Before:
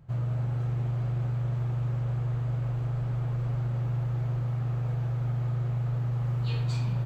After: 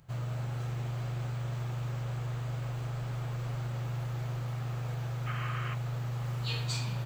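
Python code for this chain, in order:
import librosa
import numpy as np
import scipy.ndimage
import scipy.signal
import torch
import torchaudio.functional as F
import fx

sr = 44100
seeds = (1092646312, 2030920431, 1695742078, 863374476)

y = fx.low_shelf(x, sr, hz=370.0, db=-7.0)
y = fx.spec_box(y, sr, start_s=5.26, length_s=0.48, low_hz=1000.0, high_hz=3200.0, gain_db=11)
y = fx.high_shelf(y, sr, hz=2900.0, db=11.5)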